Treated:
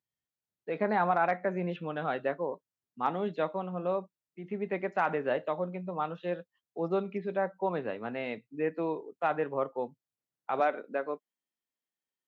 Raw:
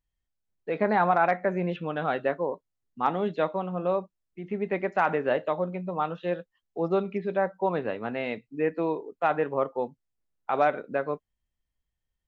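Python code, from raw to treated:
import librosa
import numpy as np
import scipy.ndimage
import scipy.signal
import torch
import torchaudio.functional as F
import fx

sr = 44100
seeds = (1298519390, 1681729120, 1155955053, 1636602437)

y = fx.highpass(x, sr, hz=fx.steps((0.0, 100.0), (10.6, 220.0)), slope=24)
y = y * 10.0 ** (-4.5 / 20.0)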